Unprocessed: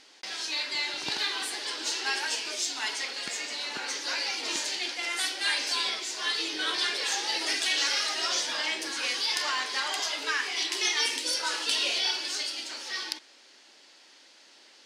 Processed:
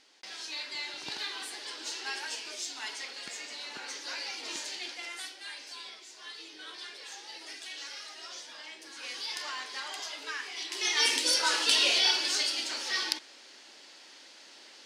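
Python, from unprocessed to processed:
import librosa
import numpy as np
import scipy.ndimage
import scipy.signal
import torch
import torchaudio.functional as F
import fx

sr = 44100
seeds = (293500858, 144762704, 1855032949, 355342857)

y = fx.gain(x, sr, db=fx.line((4.96, -7.0), (5.48, -15.5), (8.79, -15.5), (9.19, -8.5), (10.65, -8.5), (11.09, 3.0)))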